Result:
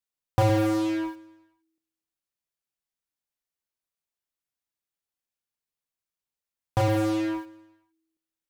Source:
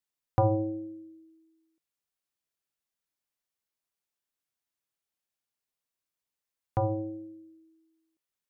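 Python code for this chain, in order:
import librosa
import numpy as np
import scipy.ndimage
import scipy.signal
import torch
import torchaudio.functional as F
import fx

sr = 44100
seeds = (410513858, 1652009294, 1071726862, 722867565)

p1 = fx.low_shelf(x, sr, hz=86.0, db=5.5)
p2 = fx.fuzz(p1, sr, gain_db=53.0, gate_db=-49.0)
p3 = p1 + (p2 * librosa.db_to_amplitude(-10.0))
p4 = fx.echo_feedback(p3, sr, ms=118, feedback_pct=60, wet_db=-22.5)
y = p4 * librosa.db_to_amplitude(-3.0)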